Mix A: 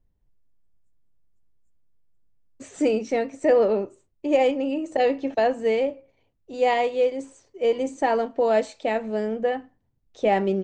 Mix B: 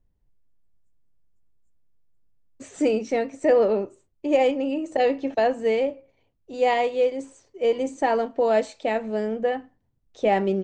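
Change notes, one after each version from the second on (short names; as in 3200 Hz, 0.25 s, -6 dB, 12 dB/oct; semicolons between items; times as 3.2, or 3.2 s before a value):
none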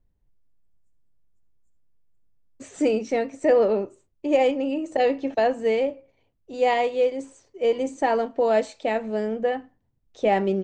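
reverb: on, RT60 0.30 s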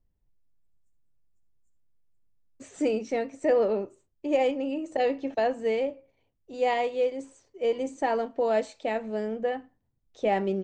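second voice -4.5 dB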